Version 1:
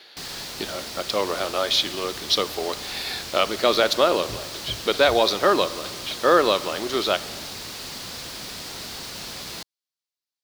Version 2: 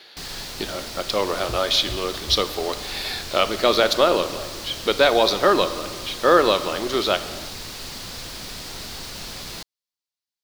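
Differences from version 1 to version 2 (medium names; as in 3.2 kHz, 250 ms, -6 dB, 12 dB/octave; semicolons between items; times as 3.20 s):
speech: send +6.0 dB; second sound: entry -2.80 s; master: remove high-pass 120 Hz 6 dB/octave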